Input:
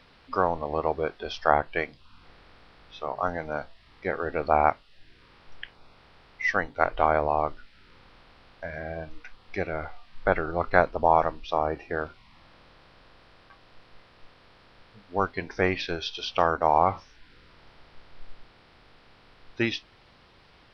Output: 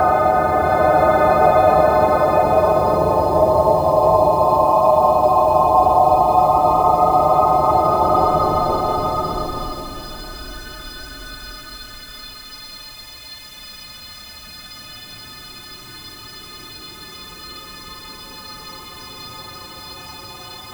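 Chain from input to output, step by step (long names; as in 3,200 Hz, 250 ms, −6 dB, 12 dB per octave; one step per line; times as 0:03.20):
every partial snapped to a pitch grid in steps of 3 semitones
parametric band 2,000 Hz −13 dB 0.46 octaves
in parallel at +3 dB: compressor whose output falls as the input rises −32 dBFS, ratio −1
on the sum: extreme stretch with random phases 22×, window 0.05 s, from 0:07.11
notch comb filter 490 Hz
bit reduction 8 bits
slow-attack reverb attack 940 ms, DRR 1.5 dB
level +5 dB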